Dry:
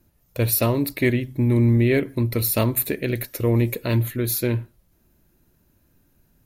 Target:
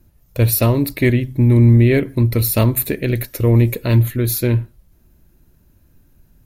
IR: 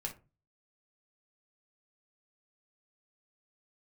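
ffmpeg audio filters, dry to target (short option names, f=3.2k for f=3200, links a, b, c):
-af "lowshelf=f=120:g=10,volume=3dB"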